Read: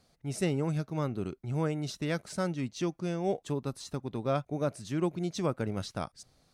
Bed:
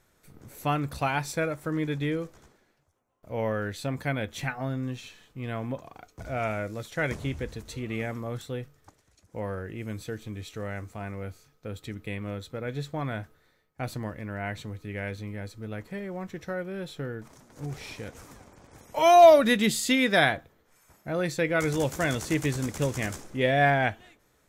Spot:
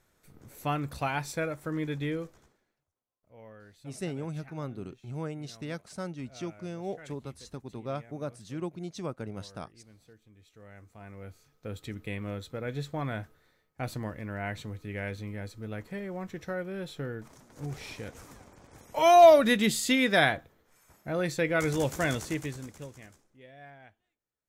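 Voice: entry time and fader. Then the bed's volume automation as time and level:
3.60 s, -5.5 dB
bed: 2.25 s -3.5 dB
3.24 s -21.5 dB
10.33 s -21.5 dB
11.65 s -1.5 dB
22.12 s -1.5 dB
23.46 s -28.5 dB

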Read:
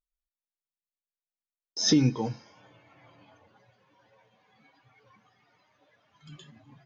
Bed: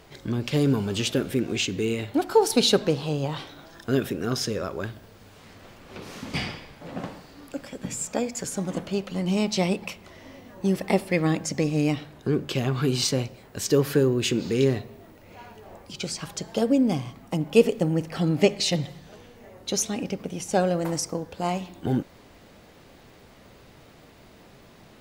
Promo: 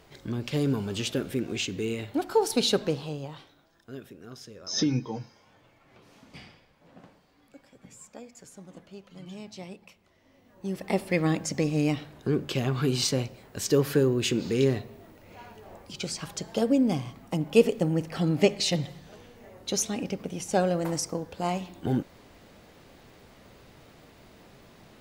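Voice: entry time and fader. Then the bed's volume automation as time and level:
2.90 s, -4.0 dB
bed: 2.94 s -4.5 dB
3.67 s -18 dB
10.23 s -18 dB
11.08 s -2 dB

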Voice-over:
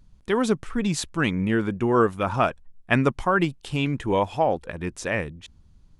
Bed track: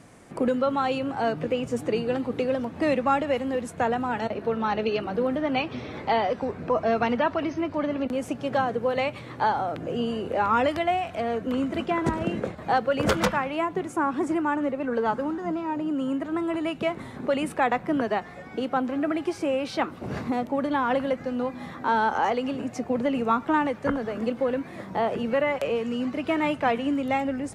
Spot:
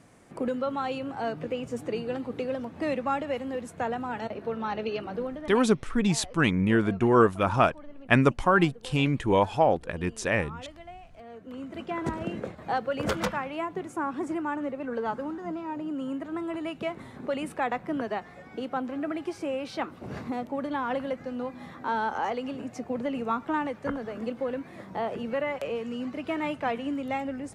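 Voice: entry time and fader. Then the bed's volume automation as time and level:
5.20 s, 0.0 dB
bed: 5.16 s -5.5 dB
5.75 s -21 dB
11.11 s -21 dB
12.02 s -5.5 dB

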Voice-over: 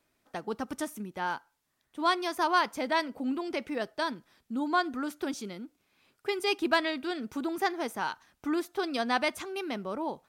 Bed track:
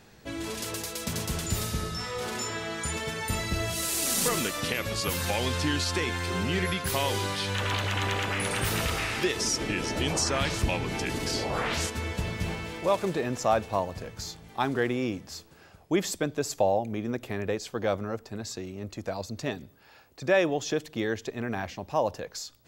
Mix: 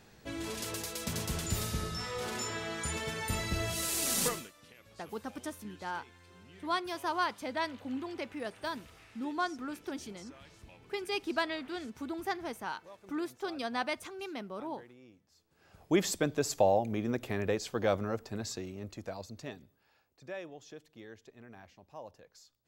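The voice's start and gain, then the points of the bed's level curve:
4.65 s, -6.0 dB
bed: 4.27 s -4 dB
4.54 s -27.5 dB
15.35 s -27.5 dB
15.81 s -1.5 dB
18.42 s -1.5 dB
20.5 s -20.5 dB

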